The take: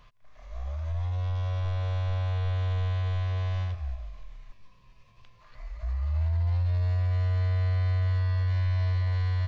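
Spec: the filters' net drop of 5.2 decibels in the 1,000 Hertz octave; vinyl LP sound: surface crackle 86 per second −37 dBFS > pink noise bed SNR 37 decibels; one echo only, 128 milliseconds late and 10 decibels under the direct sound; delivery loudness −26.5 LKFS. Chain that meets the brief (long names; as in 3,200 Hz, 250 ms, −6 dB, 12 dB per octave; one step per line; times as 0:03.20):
parametric band 1,000 Hz −6.5 dB
single-tap delay 128 ms −10 dB
surface crackle 86 per second −37 dBFS
pink noise bed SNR 37 dB
level +1.5 dB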